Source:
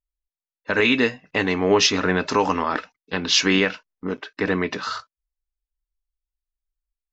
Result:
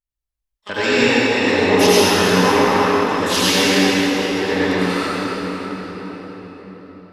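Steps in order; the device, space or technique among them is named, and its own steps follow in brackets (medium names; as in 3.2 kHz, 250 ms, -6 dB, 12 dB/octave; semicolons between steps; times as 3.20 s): shimmer-style reverb (harmony voices +12 st -8 dB; reverberation RT60 5.3 s, pre-delay 72 ms, DRR -10 dB); trim -5 dB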